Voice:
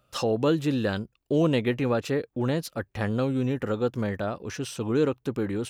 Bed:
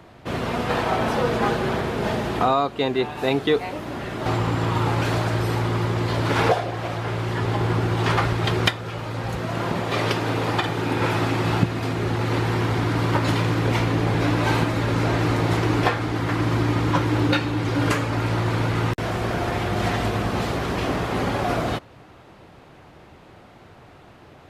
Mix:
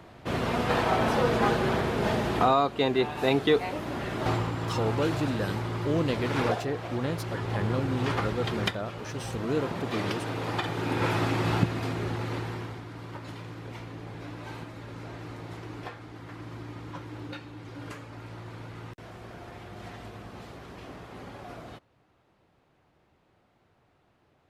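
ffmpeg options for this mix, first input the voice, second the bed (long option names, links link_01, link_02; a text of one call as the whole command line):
ffmpeg -i stem1.wav -i stem2.wav -filter_complex "[0:a]adelay=4550,volume=-5dB[link_01];[1:a]volume=2dB,afade=type=out:start_time=4.23:duration=0.29:silence=0.473151,afade=type=in:start_time=10.37:duration=0.7:silence=0.595662,afade=type=out:start_time=11.68:duration=1.15:silence=0.177828[link_02];[link_01][link_02]amix=inputs=2:normalize=0" out.wav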